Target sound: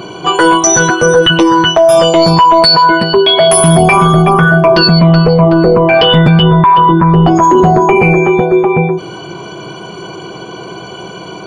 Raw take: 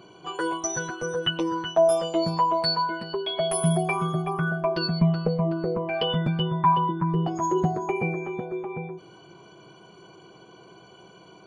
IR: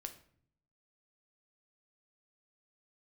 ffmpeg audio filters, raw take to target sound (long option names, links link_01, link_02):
-filter_complex "[0:a]asettb=1/sr,asplit=3[link_01][link_02][link_03];[link_01]atrim=end=6.434[link_04];[link_02]atrim=start=6.43:end=8.02,asetpts=PTS-STARTPTS,afade=type=in:duration=0.004:curve=qsin,afade=type=out:start_time=1.586:duration=0.004:curve=qsin,highshelf=frequency=4900:gain=-8.5[link_05];[link_03]atrim=start=8.016[link_06];[link_04][link_05]acrossfade=duration=0.004:curve1=hsin:curve2=qsin[link_07];[link_07][link_06]acrossfade=duration=0.004:curve1=qsin:curve2=hsin,apsyclip=25.5dB,volume=-2dB"